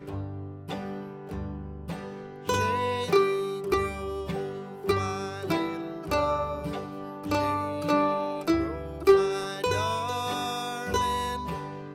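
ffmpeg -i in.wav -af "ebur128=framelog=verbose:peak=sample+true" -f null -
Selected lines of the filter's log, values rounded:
Integrated loudness:
  I:         -28.6 LUFS
  Threshold: -38.8 LUFS
Loudness range:
  LRA:         3.9 LU
  Threshold: -48.2 LUFS
  LRA low:   -30.3 LUFS
  LRA high:  -26.4 LUFS
Sample peak:
  Peak:       -9.8 dBFS
True peak:
  Peak:       -9.7 dBFS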